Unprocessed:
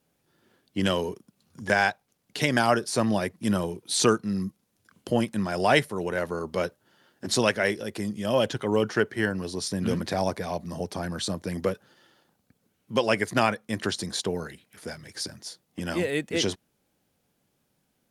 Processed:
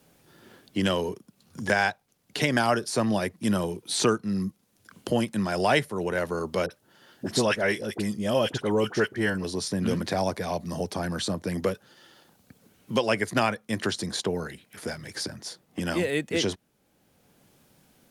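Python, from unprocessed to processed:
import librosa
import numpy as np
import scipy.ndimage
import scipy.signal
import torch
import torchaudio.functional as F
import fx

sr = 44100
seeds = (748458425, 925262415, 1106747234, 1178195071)

y = fx.dispersion(x, sr, late='highs', ms=46.0, hz=1100.0, at=(6.66, 9.44))
y = fx.band_squash(y, sr, depth_pct=40)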